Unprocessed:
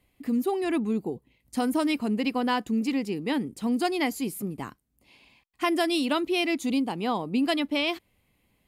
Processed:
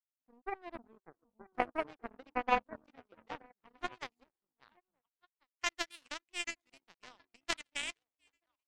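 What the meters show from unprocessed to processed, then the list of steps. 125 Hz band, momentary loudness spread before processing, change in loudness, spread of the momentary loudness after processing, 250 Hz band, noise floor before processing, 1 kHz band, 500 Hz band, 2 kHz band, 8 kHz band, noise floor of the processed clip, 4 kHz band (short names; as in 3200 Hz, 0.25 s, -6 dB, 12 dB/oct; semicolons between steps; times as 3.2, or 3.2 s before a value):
-22.5 dB, 8 LU, -12.0 dB, 19 LU, -25.5 dB, -71 dBFS, -7.5 dB, -14.5 dB, -8.0 dB, -6.0 dB, under -85 dBFS, -11.5 dB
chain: band-pass sweep 700 Hz -> 2000 Hz, 2.26–5.62; delay with a stepping band-pass 0.464 s, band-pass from 180 Hz, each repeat 1.4 oct, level 0 dB; power-law curve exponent 3; gain +8.5 dB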